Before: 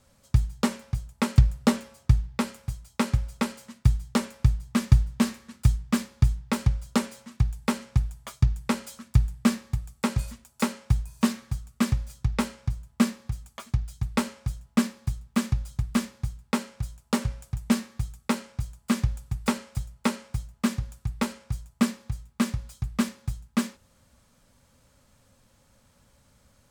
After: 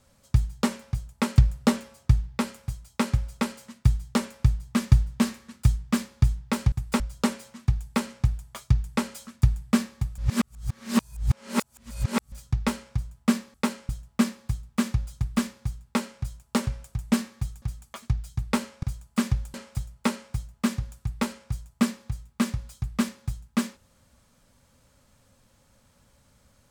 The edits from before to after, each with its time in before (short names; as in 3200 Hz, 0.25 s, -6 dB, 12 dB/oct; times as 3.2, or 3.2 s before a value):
9.9–12.04 reverse
13.26–14.47 swap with 18.2–18.55
19.26–19.54 move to 6.72